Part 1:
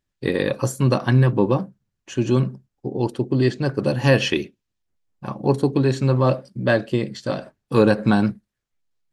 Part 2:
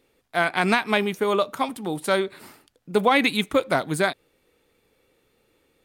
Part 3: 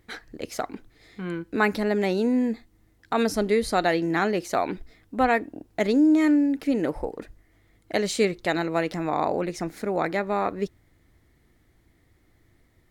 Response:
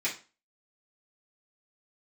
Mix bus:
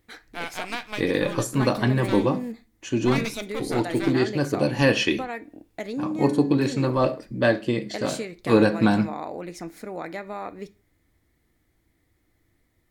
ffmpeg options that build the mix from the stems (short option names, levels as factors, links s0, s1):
-filter_complex "[0:a]adelay=750,volume=0.708,asplit=2[s0][s1];[s1]volume=0.266[s2];[1:a]highpass=f=660:p=1,aeval=exprs='max(val(0),0)':c=same,volume=0.398,asplit=3[s3][s4][s5];[s3]atrim=end=2.52,asetpts=PTS-STARTPTS,afade=t=out:st=2.516:d=0.004:c=hsin[s6];[s4]atrim=start=2.52:end=3.02,asetpts=PTS-STARTPTS,volume=0[s7];[s5]atrim=start=3.02,asetpts=PTS-STARTPTS,afade=t=in:d=0.004:c=hsin[s8];[s6][s7][s8]concat=n=3:v=0:a=1,asplit=2[s9][s10];[s10]volume=0.168[s11];[2:a]highshelf=f=8900:g=6,acompressor=threshold=0.0794:ratio=6,volume=0.473,asplit=2[s12][s13];[s13]volume=0.141[s14];[3:a]atrim=start_sample=2205[s15];[s2][s11][s14]amix=inputs=3:normalize=0[s16];[s16][s15]afir=irnorm=-1:irlink=0[s17];[s0][s9][s12][s17]amix=inputs=4:normalize=0"